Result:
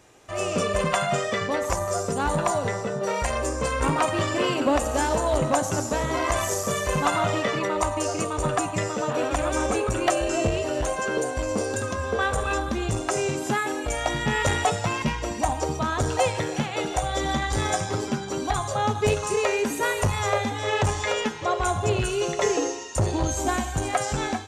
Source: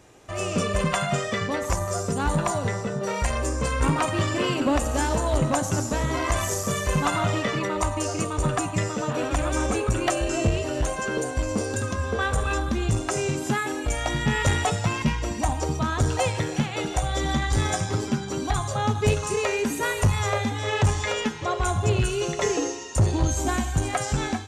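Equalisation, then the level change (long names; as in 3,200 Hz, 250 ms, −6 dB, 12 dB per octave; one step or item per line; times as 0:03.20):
dynamic equaliser 560 Hz, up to +5 dB, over −38 dBFS, Q 0.74
low-shelf EQ 430 Hz −5 dB
0.0 dB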